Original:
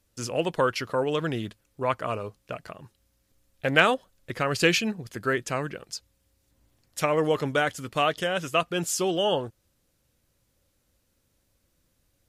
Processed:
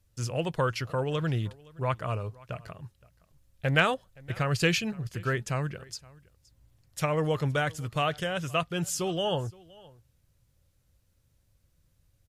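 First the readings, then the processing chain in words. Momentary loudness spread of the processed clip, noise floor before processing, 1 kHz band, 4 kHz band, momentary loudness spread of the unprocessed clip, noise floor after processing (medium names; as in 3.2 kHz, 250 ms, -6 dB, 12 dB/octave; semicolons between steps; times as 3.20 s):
15 LU, -72 dBFS, -4.0 dB, -4.0 dB, 17 LU, -69 dBFS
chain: resonant low shelf 180 Hz +8.5 dB, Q 1.5; on a send: delay 519 ms -23.5 dB; on the sum: trim -4 dB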